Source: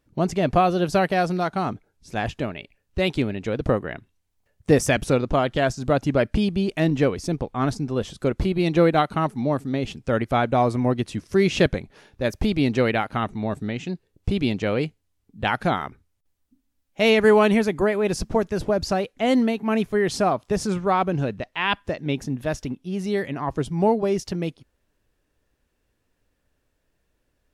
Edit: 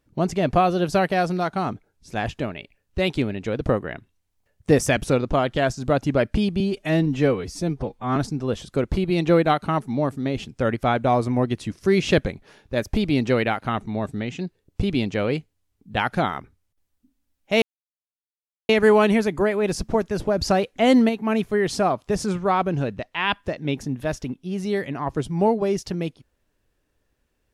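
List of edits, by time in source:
6.6–7.64 stretch 1.5×
17.1 insert silence 1.07 s
18.79–19.5 gain +3.5 dB

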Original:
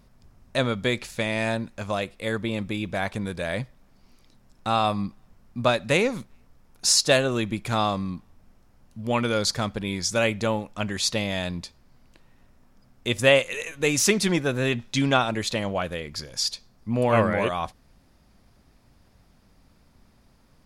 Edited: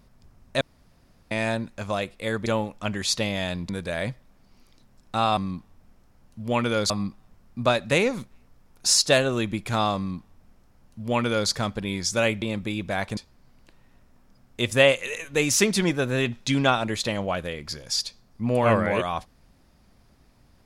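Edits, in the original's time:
0.61–1.31 room tone
2.46–3.21 swap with 10.41–11.64
7.96–9.49 copy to 4.89

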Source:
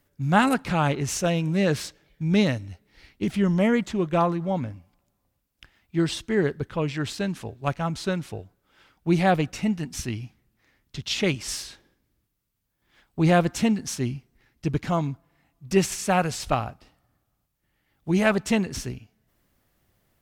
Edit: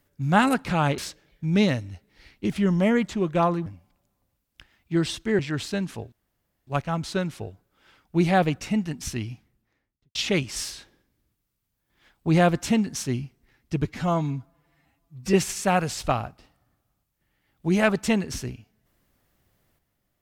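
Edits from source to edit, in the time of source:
0.98–1.76 cut
4.44–4.69 cut
6.42–6.86 cut
7.59 insert room tone 0.55 s
10.24–11.07 studio fade out
14.77–15.76 stretch 1.5×

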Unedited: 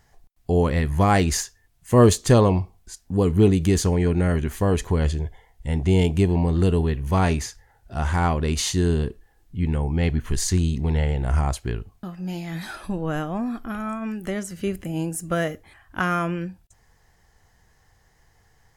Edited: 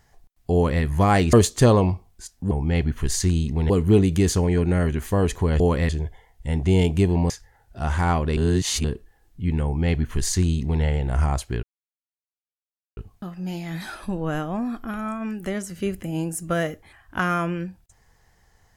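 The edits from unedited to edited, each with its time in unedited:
0.54–0.83 copy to 5.09
1.33–2.01 cut
6.5–7.45 cut
8.52–8.99 reverse
9.79–10.98 copy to 3.19
11.78 insert silence 1.34 s

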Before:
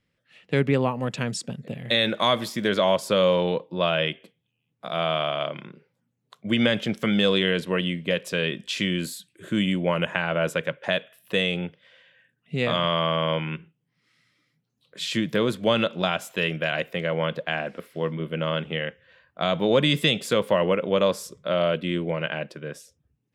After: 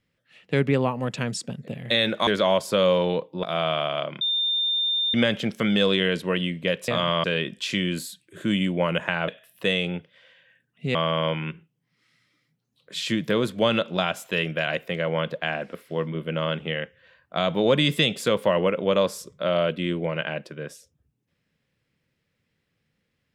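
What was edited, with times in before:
2.27–2.65 cut
3.81–4.86 cut
5.64–6.57 bleep 3610 Hz -21 dBFS
10.35–10.97 cut
12.64–13 move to 8.31

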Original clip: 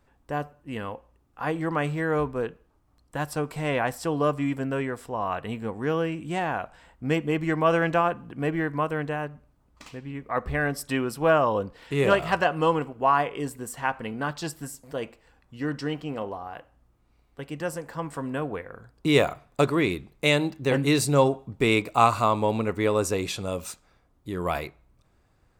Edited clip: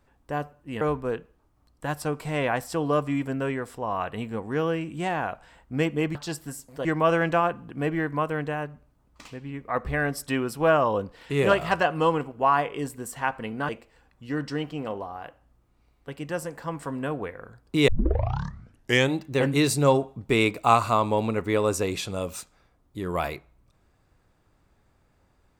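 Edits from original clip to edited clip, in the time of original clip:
0.81–2.12 cut
14.3–15 move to 7.46
19.19 tape start 1.28 s

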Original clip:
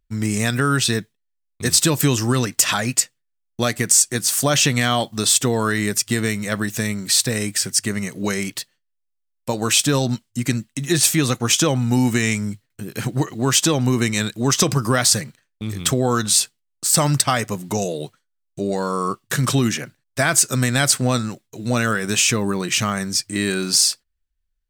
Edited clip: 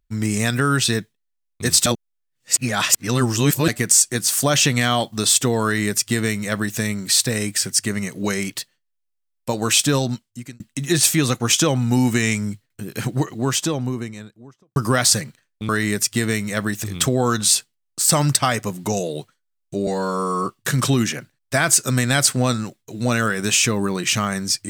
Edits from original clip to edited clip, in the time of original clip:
1.86–3.68 reverse
5.64–6.79 copy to 15.69
9.94–10.6 fade out
13–14.76 studio fade out
18.72–19.12 stretch 1.5×

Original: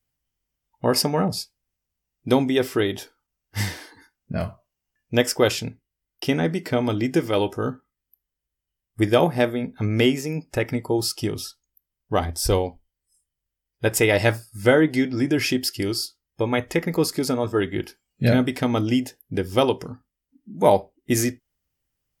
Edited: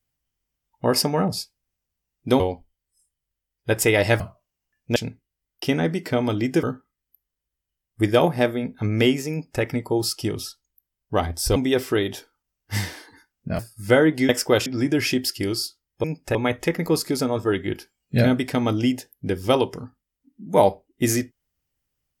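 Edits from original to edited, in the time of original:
2.4–4.43 swap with 12.55–14.35
5.19–5.56 move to 15.05
7.23–7.62 cut
10.3–10.61 copy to 16.43

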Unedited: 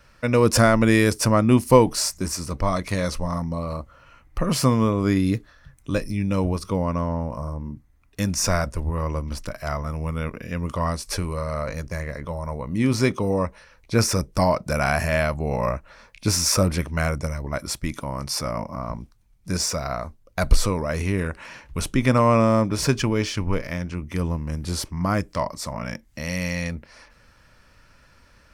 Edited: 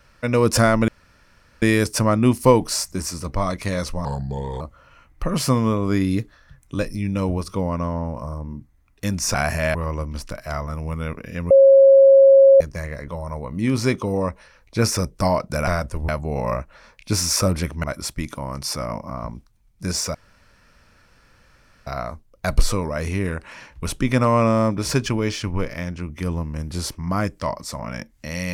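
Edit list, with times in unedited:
0.88 insert room tone 0.74 s
3.31–3.76 speed 81%
8.5–8.91 swap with 14.84–15.24
10.67–11.77 bleep 544 Hz -7 dBFS
16.99–17.49 cut
19.8 insert room tone 1.72 s

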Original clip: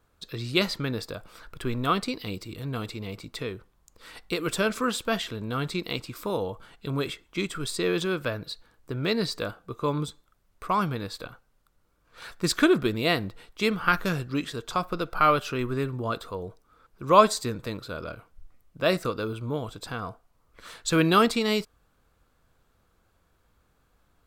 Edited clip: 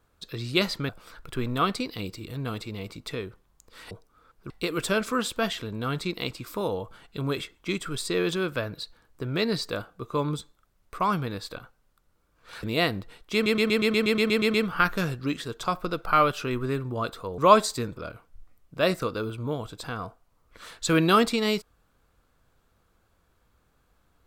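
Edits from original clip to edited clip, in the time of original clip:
0.89–1.17 cut
12.32–12.91 cut
13.62 stutter 0.12 s, 11 plays
16.46–17.05 move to 4.19
17.64–18 cut

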